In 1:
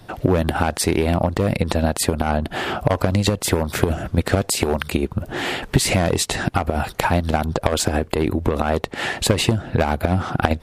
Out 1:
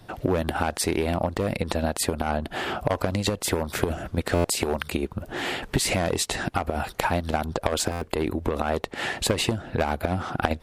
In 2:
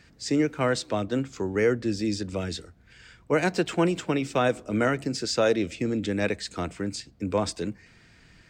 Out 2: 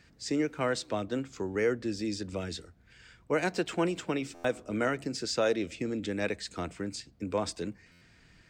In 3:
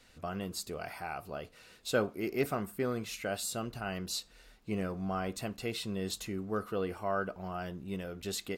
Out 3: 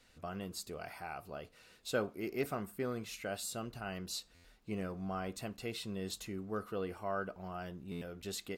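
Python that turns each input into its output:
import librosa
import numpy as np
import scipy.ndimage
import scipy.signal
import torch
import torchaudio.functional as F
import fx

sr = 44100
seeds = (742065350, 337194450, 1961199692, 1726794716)

y = fx.dynamic_eq(x, sr, hz=120.0, q=0.78, threshold_db=-33.0, ratio=4.0, max_db=-5)
y = fx.buffer_glitch(y, sr, at_s=(4.34, 7.91), block=512, repeats=8)
y = F.gain(torch.from_numpy(y), -4.5).numpy()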